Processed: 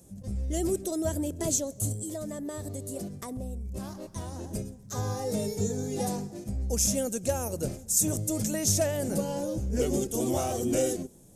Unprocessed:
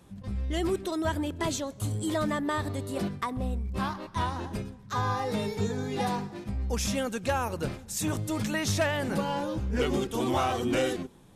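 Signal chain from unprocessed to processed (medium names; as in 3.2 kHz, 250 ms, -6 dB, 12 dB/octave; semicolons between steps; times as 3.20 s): FFT filter 400 Hz 0 dB, 620 Hz +2 dB, 1 kHz -13 dB, 3.8 kHz -8 dB, 6.5 kHz +10 dB; 1.92–4.49 s: compression, threshold -33 dBFS, peak gain reduction 8.5 dB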